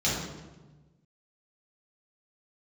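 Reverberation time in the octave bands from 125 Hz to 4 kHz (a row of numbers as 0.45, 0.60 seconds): 1.7, 1.5, 1.3, 1.1, 0.95, 0.80 seconds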